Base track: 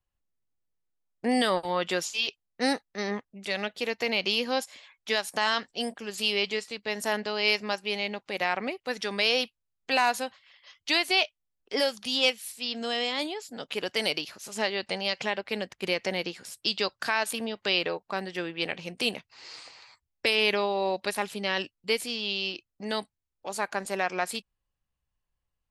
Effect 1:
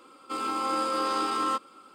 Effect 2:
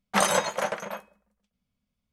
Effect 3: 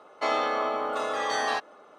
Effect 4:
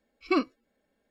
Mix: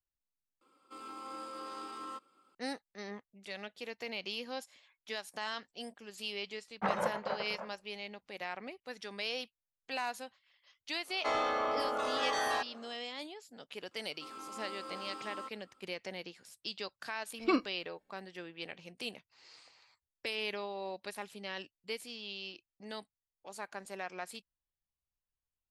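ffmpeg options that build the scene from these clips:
-filter_complex "[1:a]asplit=2[s0][s1];[0:a]volume=0.224[s2];[2:a]lowpass=1500[s3];[3:a]asoftclip=type=tanh:threshold=0.0944[s4];[s2]asplit=2[s5][s6];[s5]atrim=end=0.614[s7];[s0]atrim=end=1.94,asetpts=PTS-STARTPTS,volume=0.15[s8];[s6]atrim=start=2.546[s9];[s3]atrim=end=2.12,asetpts=PTS-STARTPTS,volume=0.398,afade=t=in:d=0.004:c=hsin,afade=t=out:st=2.116:d=0.004:c=hsin,adelay=6680[s10];[s4]atrim=end=1.98,asetpts=PTS-STARTPTS,volume=0.631,afade=t=in:d=0.1,afade=t=out:st=1.88:d=0.1,adelay=11030[s11];[s1]atrim=end=1.94,asetpts=PTS-STARTPTS,volume=0.141,afade=t=in:d=0.004:c=hsin,afade=t=out:st=1.936:d=0.004:c=hsin,adelay=13910[s12];[4:a]atrim=end=1.1,asetpts=PTS-STARTPTS,volume=0.631,afade=t=in:d=0.004:c=hsin,afade=t=out:st=1.096:d=0.004:c=hsin,adelay=17170[s13];[s7][s8]acrossfade=d=0.004:c1=hsin:c2=hsin[s14];[s14][s9]acrossfade=d=0.004:c1=hsin:c2=hsin[s15];[s15][s10][s11][s12][s13]amix=inputs=5:normalize=0"

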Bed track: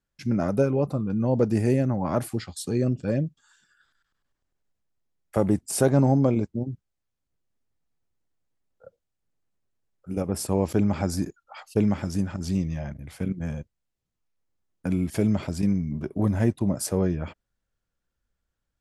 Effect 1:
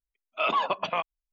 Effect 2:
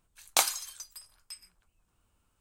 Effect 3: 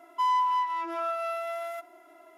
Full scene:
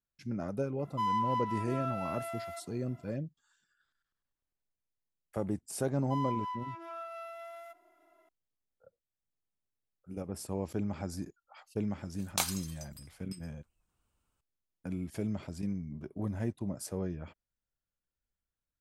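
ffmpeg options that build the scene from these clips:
-filter_complex "[3:a]asplit=2[s0][s1];[0:a]volume=0.251[s2];[s0]atrim=end=2.37,asetpts=PTS-STARTPTS,volume=0.473,afade=t=in:d=0.004:c=hsin,afade=t=out:st=2.366:d=0.004:c=hsin,adelay=790[s3];[s1]atrim=end=2.37,asetpts=PTS-STARTPTS,volume=0.251,afade=t=in:d=0.004:c=hsin,afade=t=out:st=2.366:d=0.004:c=hsin,adelay=5920[s4];[2:a]atrim=end=2.4,asetpts=PTS-STARTPTS,volume=0.473,afade=t=in:d=0.004:c=hsin,afade=t=out:st=2.396:d=0.004:c=hsin,adelay=12010[s5];[s2][s3][s4][s5]amix=inputs=4:normalize=0"

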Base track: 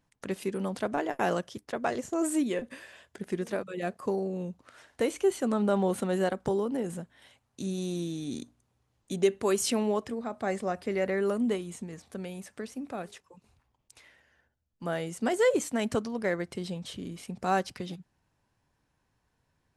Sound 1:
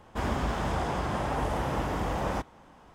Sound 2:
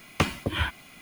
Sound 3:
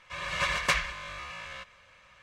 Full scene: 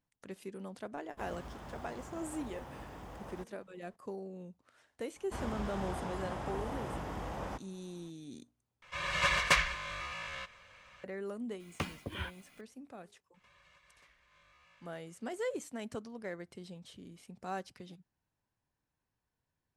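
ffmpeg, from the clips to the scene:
-filter_complex "[1:a]asplit=2[s0][s1];[3:a]asplit=2[s2][s3];[0:a]volume=0.237[s4];[s0]acrusher=bits=6:mode=log:mix=0:aa=0.000001[s5];[s3]acompressor=threshold=0.00794:ratio=12:attack=0.11:release=435:knee=1:detection=peak[s6];[s4]asplit=2[s7][s8];[s7]atrim=end=8.824[s9];[s2]atrim=end=2.22,asetpts=PTS-STARTPTS,volume=0.944[s10];[s8]atrim=start=11.036[s11];[s5]atrim=end=2.94,asetpts=PTS-STARTPTS,volume=0.126,afade=t=in:d=0.004:c=hsin,afade=t=out:st=2.936:d=0.004:c=hsin,adelay=1020[s12];[s1]atrim=end=2.94,asetpts=PTS-STARTPTS,volume=0.316,afade=t=in:d=0.004:c=hsin,afade=t=out:st=2.936:d=0.004:c=hsin,adelay=5160[s13];[2:a]atrim=end=1.01,asetpts=PTS-STARTPTS,volume=0.224,afade=t=in:d=0.004:c=hsin,afade=t=out:st=1.006:d=0.004:c=hsin,adelay=11600[s14];[s6]atrim=end=2.22,asetpts=PTS-STARTPTS,volume=0.168,afade=t=in:d=0.004:c=hsin,afade=t=out:st=2.216:d=0.004:c=hsin,adelay=13340[s15];[s9][s10]acrossfade=d=0.004:c1=hsin:c2=hsin[s16];[s16][s11]acrossfade=d=0.004:c1=hsin:c2=hsin[s17];[s17][s12][s13][s14][s15]amix=inputs=5:normalize=0"

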